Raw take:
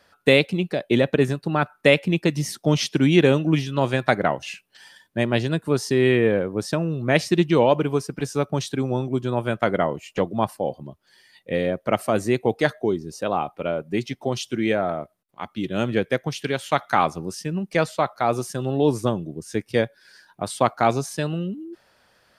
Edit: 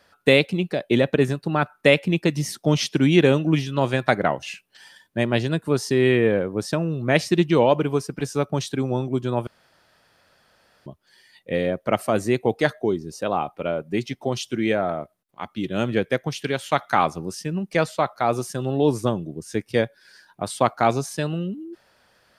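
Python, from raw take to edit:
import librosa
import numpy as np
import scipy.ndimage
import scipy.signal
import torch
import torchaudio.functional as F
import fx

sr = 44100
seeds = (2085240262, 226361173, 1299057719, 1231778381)

y = fx.edit(x, sr, fx.room_tone_fill(start_s=9.47, length_s=1.39), tone=tone)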